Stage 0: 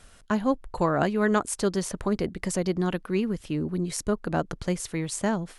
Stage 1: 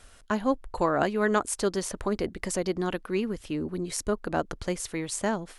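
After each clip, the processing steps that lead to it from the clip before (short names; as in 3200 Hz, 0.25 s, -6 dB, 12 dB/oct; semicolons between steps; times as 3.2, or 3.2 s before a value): bell 160 Hz -7.5 dB 0.86 oct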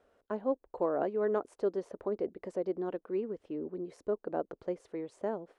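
band-pass 470 Hz, Q 1.7; gain -2 dB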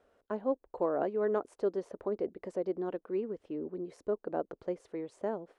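nothing audible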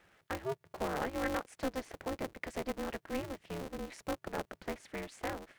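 in parallel at -2.5 dB: compressor, threshold -41 dBFS, peak gain reduction 15.5 dB; on the sum: graphic EQ 125/250/500/1000/2000 Hz -6/-7/-9/-9/+9 dB; polarity switched at an audio rate 130 Hz; gain +3.5 dB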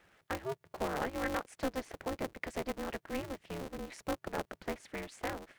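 harmonic-percussive split percussive +3 dB; gain -1.5 dB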